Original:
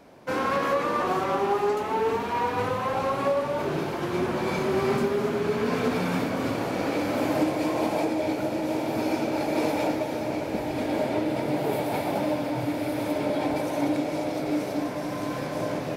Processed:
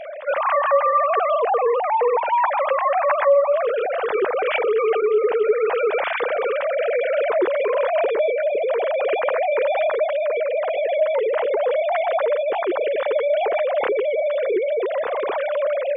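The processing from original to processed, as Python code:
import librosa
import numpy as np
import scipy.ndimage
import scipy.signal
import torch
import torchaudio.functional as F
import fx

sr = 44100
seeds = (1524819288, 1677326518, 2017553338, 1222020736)

y = fx.sine_speech(x, sr)
y = fx.env_flatten(y, sr, amount_pct=50)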